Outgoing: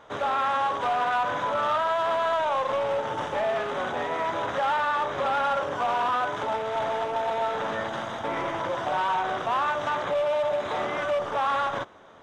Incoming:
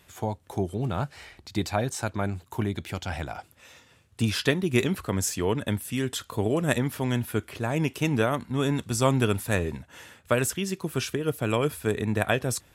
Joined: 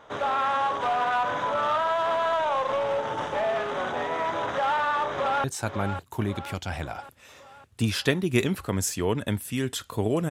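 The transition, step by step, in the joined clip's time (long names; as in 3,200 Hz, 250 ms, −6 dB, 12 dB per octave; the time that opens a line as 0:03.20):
outgoing
0:05.08–0:05.44: delay throw 550 ms, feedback 55%, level −9 dB
0:05.44: continue with incoming from 0:01.84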